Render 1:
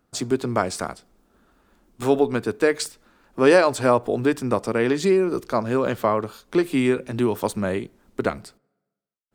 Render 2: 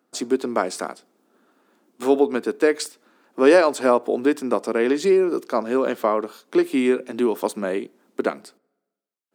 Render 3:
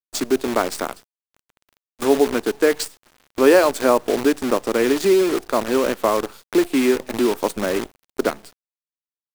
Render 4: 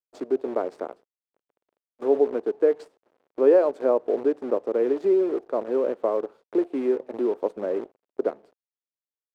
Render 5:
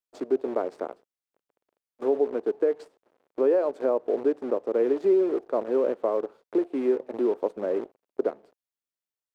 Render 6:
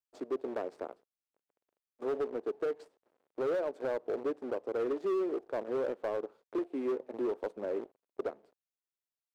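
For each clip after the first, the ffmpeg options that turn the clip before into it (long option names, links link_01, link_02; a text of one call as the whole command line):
ffmpeg -i in.wav -af "highpass=frequency=250:width=0.5412,highpass=frequency=250:width=1.3066,lowshelf=frequency=410:gain=5.5,volume=-1dB" out.wav
ffmpeg -i in.wav -filter_complex "[0:a]asplit=2[link_01][link_02];[link_02]acompressor=threshold=-26dB:ratio=12,volume=-3dB[link_03];[link_01][link_03]amix=inputs=2:normalize=0,acrusher=bits=5:dc=4:mix=0:aa=0.000001" out.wav
ffmpeg -i in.wav -af "bandpass=frequency=480:width_type=q:width=1.9:csg=0,volume=-2dB" out.wav
ffmpeg -i in.wav -af "alimiter=limit=-14dB:level=0:latency=1:release=294" out.wav
ffmpeg -i in.wav -af "volume=20.5dB,asoftclip=hard,volume=-20.5dB,volume=-7.5dB" out.wav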